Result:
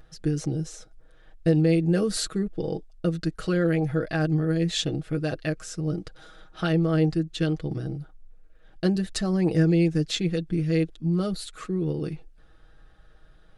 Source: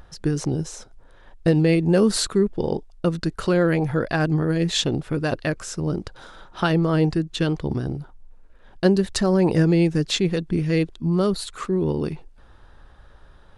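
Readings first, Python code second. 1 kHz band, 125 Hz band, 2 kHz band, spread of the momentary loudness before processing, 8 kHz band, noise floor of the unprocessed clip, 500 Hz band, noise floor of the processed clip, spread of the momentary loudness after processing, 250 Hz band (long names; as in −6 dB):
−8.0 dB, −2.5 dB, −5.5 dB, 10 LU, −5.0 dB, −49 dBFS, −5.5 dB, −53 dBFS, 10 LU, −3.5 dB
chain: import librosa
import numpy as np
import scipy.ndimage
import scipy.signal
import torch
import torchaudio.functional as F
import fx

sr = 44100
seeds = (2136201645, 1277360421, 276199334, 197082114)

y = fx.peak_eq(x, sr, hz=970.0, db=-14.0, octaves=0.26)
y = y + 0.65 * np.pad(y, (int(6.3 * sr / 1000.0), 0))[:len(y)]
y = F.gain(torch.from_numpy(y), -6.5).numpy()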